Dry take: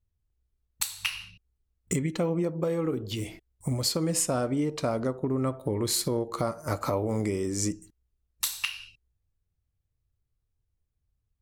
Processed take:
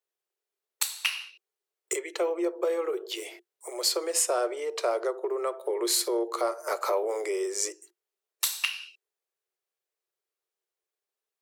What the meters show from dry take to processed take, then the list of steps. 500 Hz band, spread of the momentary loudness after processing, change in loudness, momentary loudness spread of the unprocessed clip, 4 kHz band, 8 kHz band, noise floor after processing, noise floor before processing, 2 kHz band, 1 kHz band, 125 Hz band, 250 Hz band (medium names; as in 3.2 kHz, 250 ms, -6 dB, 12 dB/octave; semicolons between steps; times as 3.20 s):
+2.5 dB, 11 LU, +0.5 dB, 8 LU, +2.0 dB, +2.0 dB, under -85 dBFS, -79 dBFS, +2.5 dB, +2.5 dB, under -40 dB, -7.5 dB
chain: Chebyshev high-pass 350 Hz, order 8; in parallel at -7 dB: saturation -20 dBFS, distortion -20 dB